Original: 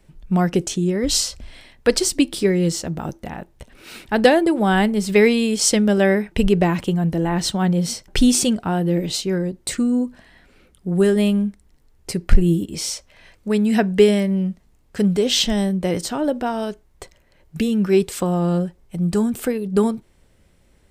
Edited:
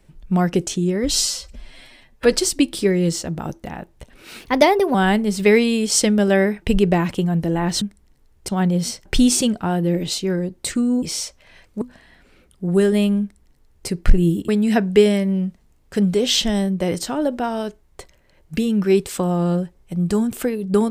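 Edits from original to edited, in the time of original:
1.11–1.92 s: stretch 1.5×
4.01–4.64 s: speed 119%
11.44–12.11 s: copy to 7.51 s
12.72–13.51 s: move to 10.05 s

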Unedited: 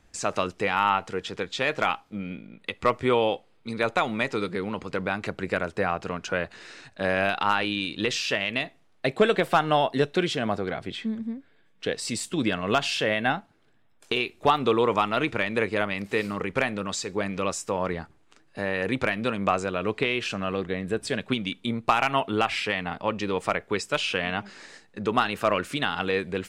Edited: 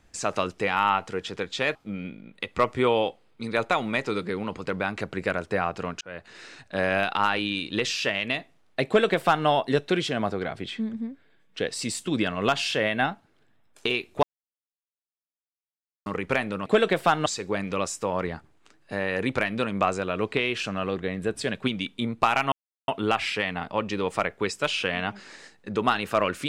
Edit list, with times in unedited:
1.75–2.01 s: delete
6.27–6.68 s: fade in
9.13–9.73 s: copy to 16.92 s
14.49–16.32 s: mute
22.18 s: insert silence 0.36 s

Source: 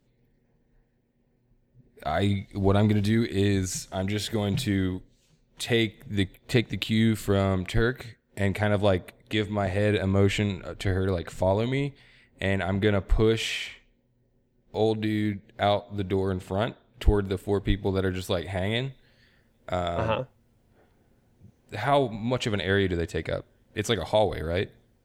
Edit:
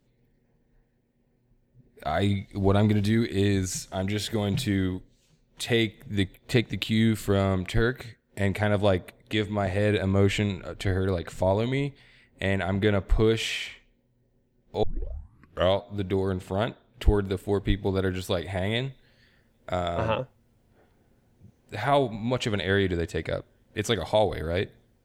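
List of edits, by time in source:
14.83 s: tape start 0.94 s

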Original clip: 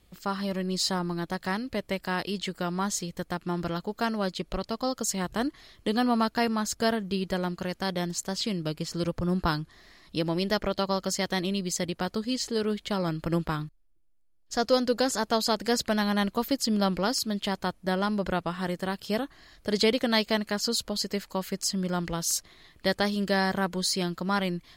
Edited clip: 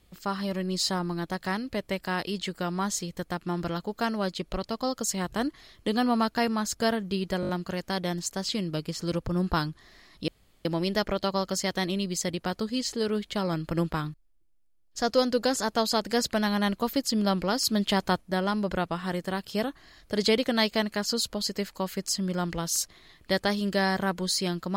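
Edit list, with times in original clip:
7.41 s: stutter 0.02 s, 5 plays
10.20 s: insert room tone 0.37 s
17.19–17.76 s: gain +4.5 dB

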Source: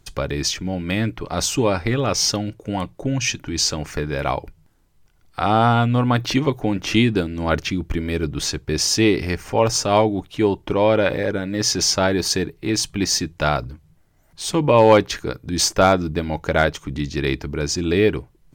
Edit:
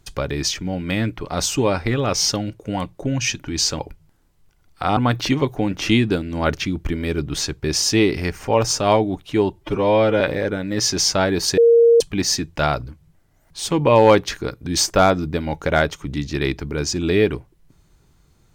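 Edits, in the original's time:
3.79–4.36 s: delete
5.54–6.02 s: delete
10.58–11.03 s: stretch 1.5×
12.40–12.83 s: bleep 466 Hz -8.5 dBFS

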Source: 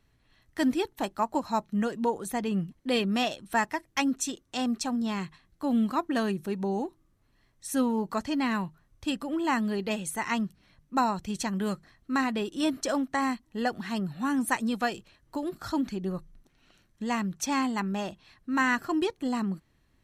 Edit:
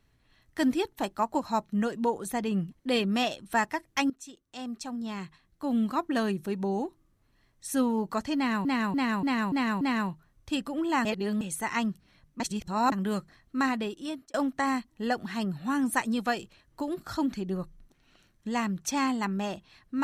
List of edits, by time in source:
4.10–6.17 s: fade in, from -17 dB
8.36–8.65 s: loop, 6 plays
9.60–9.96 s: reverse
10.95–11.47 s: reverse
12.26–12.89 s: fade out

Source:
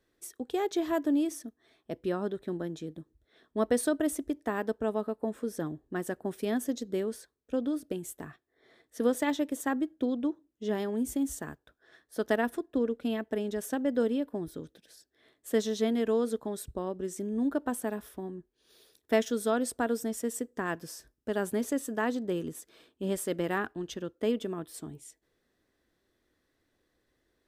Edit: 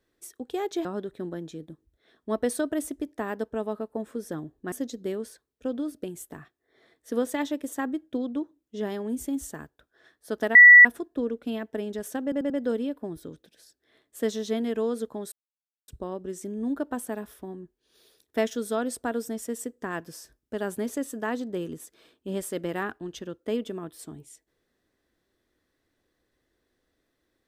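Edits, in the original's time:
0.85–2.13 s: delete
6.00–6.60 s: delete
12.43 s: add tone 1.95 kHz -7 dBFS 0.30 s
13.81 s: stutter 0.09 s, 4 plays
16.63 s: insert silence 0.56 s

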